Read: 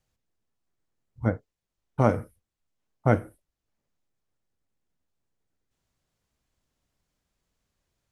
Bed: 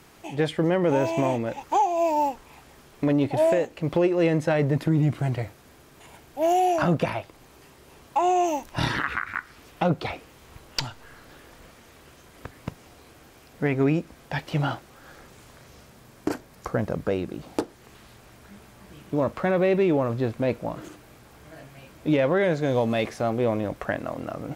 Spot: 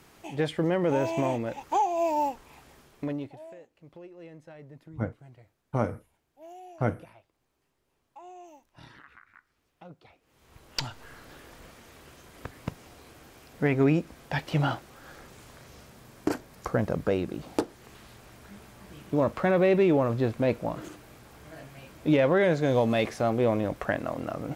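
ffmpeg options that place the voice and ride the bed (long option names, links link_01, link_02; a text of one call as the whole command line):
ffmpeg -i stem1.wav -i stem2.wav -filter_complex "[0:a]adelay=3750,volume=-6dB[link_01];[1:a]volume=21.5dB,afade=type=out:start_time=2.71:duration=0.68:silence=0.0794328,afade=type=in:start_time=10.21:duration=0.82:silence=0.0562341[link_02];[link_01][link_02]amix=inputs=2:normalize=0" out.wav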